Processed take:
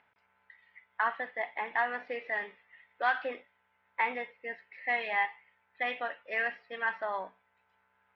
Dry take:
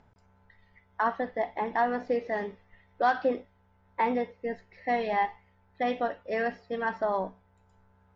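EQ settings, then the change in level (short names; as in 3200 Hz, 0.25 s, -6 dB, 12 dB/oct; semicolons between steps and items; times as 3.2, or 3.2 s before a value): band-pass 2400 Hz, Q 1.8; air absorption 200 m; +9.0 dB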